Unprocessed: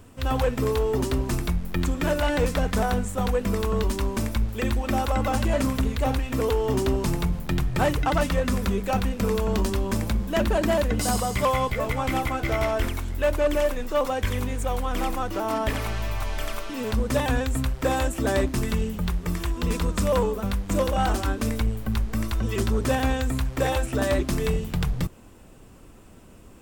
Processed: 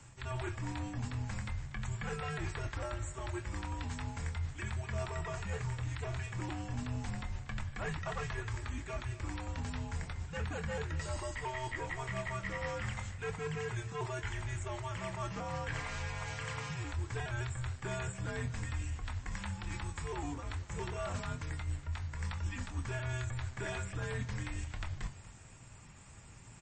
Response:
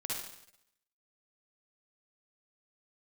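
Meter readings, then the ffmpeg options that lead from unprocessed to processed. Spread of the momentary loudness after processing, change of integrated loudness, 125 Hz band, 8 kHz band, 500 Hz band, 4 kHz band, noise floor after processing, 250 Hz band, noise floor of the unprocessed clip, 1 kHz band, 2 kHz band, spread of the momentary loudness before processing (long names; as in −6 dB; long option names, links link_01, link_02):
3 LU, −14.0 dB, −10.0 dB, −12.5 dB, −18.5 dB, −13.5 dB, −53 dBFS, −18.5 dB, −48 dBFS, −15.0 dB, −9.5 dB, 5 LU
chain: -filter_complex "[0:a]aemphasis=mode=production:type=50fm,bandreject=frequency=279.1:width_type=h:width=4,bandreject=frequency=558.2:width_type=h:width=4,bandreject=frequency=837.3:width_type=h:width=4,bandreject=frequency=1116.4:width_type=h:width=4,bandreject=frequency=1395.5:width_type=h:width=4,bandreject=frequency=1674.6:width_type=h:width=4,bandreject=frequency=1953.7:width_type=h:width=4,bandreject=frequency=2232.8:width_type=h:width=4,bandreject=frequency=2511.9:width_type=h:width=4,bandreject=frequency=2791:width_type=h:width=4,bandreject=frequency=3070.1:width_type=h:width=4,bandreject=frequency=3349.2:width_type=h:width=4,bandreject=frequency=3628.3:width_type=h:width=4,bandreject=frequency=3907.4:width_type=h:width=4,bandreject=frequency=4186.5:width_type=h:width=4,bandreject=frequency=4465.6:width_type=h:width=4,bandreject=frequency=4744.7:width_type=h:width=4,bandreject=frequency=5023.8:width_type=h:width=4,acrossover=split=3700[link_01][link_02];[link_02]acompressor=threshold=-32dB:ratio=4:attack=1:release=60[link_03];[link_01][link_03]amix=inputs=2:normalize=0,equalizer=frequency=250:width_type=o:width=1:gain=10,equalizer=frequency=500:width_type=o:width=1:gain=-4,equalizer=frequency=1000:width_type=o:width=1:gain=4,equalizer=frequency=2000:width_type=o:width=1:gain=9,equalizer=frequency=8000:width_type=o:width=1:gain=5,areverse,acompressor=threshold=-27dB:ratio=8,areverse,aeval=exprs='sgn(val(0))*max(abs(val(0))-0.0015,0)':channel_layout=same,afreqshift=-140,asplit=2[link_04][link_05];[link_05]adelay=25,volume=-11.5dB[link_06];[link_04][link_06]amix=inputs=2:normalize=0,aecho=1:1:239|478:0.126|0.0302,volume=-8dB" -ar 24000 -c:a libmp3lame -b:a 32k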